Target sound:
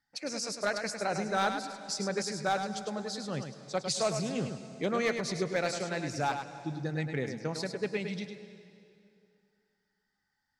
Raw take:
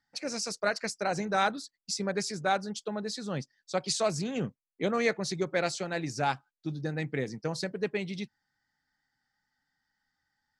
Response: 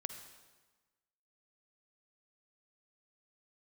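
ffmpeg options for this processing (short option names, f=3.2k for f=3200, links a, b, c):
-filter_complex "[0:a]asoftclip=type=hard:threshold=-18.5dB,asplit=2[a][b];[1:a]atrim=start_sample=2205,asetrate=22491,aresample=44100,adelay=104[c];[b][c]afir=irnorm=-1:irlink=0,volume=-8.5dB[d];[a][d]amix=inputs=2:normalize=0,volume=-2dB"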